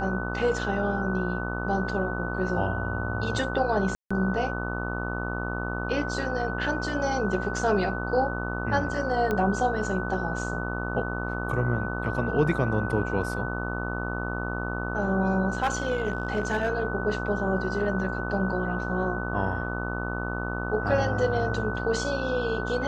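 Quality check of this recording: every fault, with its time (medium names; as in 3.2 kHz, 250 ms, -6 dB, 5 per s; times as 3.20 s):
buzz 60 Hz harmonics 24 -32 dBFS
whine 1.5 kHz -33 dBFS
3.95–4.11 s: dropout 155 ms
9.31 s: pop -15 dBFS
15.50–16.70 s: clipped -20 dBFS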